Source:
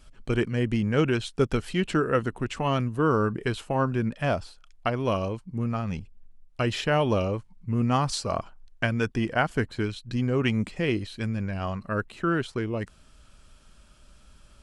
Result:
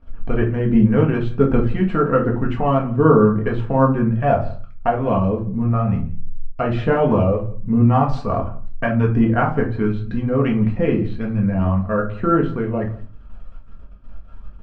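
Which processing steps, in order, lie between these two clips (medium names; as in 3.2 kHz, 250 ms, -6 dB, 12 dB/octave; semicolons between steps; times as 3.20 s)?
gate -51 dBFS, range -14 dB; low-pass 1.4 kHz 12 dB/octave; in parallel at 0 dB: compression, threshold -39 dBFS, peak gain reduction 19.5 dB; on the sum: phaser 1.3 Hz, delay 1.8 ms, feedback 33%; on a send: delay 170 ms -22 dB; on the sum: simulated room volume 180 m³, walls furnished, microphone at 1.7 m; trim +2.5 dB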